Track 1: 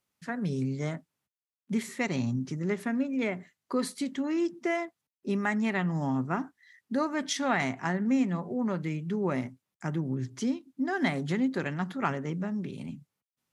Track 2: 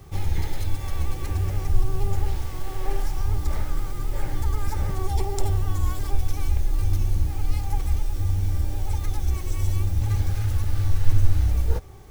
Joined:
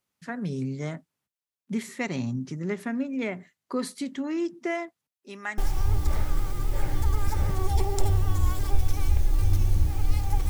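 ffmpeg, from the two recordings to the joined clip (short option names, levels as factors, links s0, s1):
-filter_complex "[0:a]asettb=1/sr,asplit=3[s0][s1][s2];[s0]atrim=end=5.134[s3];[s1]atrim=start=5.13:end=5.58,asetpts=PTS-STARTPTS,afade=t=in:d=0.004:c=qsin,afade=t=out:st=0.446:d=0.004:c=qsin,highpass=f=1300:p=1[s4];[s2]atrim=start=5.576[s5];[s3][s4]acrossfade=d=0.004:c1=hsin:c2=qsin[s6];[s6][s5]acrossfade=d=0.004:c1=qsin:c2=hsin,apad=whole_dur=10.49,atrim=end=10.49,atrim=end=5.582[s7];[1:a]atrim=start=2.978:end=7.89[s8];[s7][s8]acrossfade=d=0.004:c1=hsin:c2=hsin"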